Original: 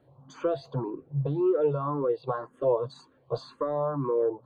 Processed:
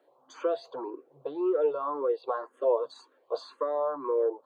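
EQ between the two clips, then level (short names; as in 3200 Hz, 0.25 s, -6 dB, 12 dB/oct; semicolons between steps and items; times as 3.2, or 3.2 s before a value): HPF 370 Hz 24 dB/oct; 0.0 dB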